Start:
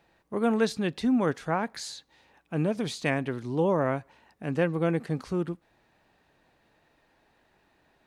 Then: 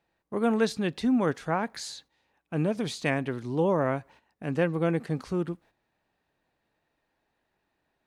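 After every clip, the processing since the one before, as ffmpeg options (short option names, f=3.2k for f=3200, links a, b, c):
-af "agate=range=-11dB:threshold=-53dB:ratio=16:detection=peak"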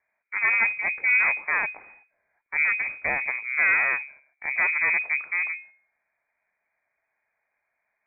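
-af "bandreject=f=69.86:t=h:w=4,bandreject=f=139.72:t=h:w=4,bandreject=f=209.58:t=h:w=4,bandreject=f=279.44:t=h:w=4,bandreject=f=349.3:t=h:w=4,bandreject=f=419.16:t=h:w=4,aeval=exprs='0.237*(cos(1*acos(clip(val(0)/0.237,-1,1)))-cos(1*PI/2))+0.0596*(cos(6*acos(clip(val(0)/0.237,-1,1)))-cos(6*PI/2))':c=same,lowpass=f=2.1k:t=q:w=0.5098,lowpass=f=2.1k:t=q:w=0.6013,lowpass=f=2.1k:t=q:w=0.9,lowpass=f=2.1k:t=q:w=2.563,afreqshift=-2500"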